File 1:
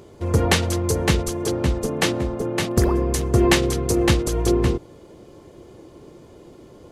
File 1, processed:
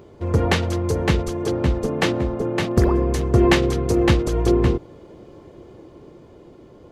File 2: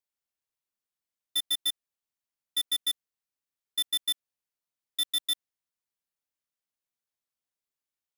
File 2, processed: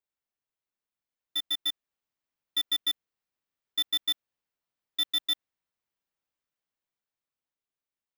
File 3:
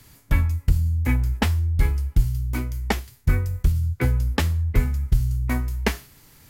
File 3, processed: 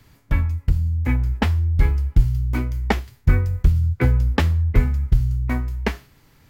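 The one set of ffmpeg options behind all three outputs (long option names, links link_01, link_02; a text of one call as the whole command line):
ffmpeg -i in.wav -af "equalizer=frequency=11000:width_type=o:width=1.8:gain=-12.5,dynaudnorm=framelen=180:gausssize=17:maxgain=5dB" out.wav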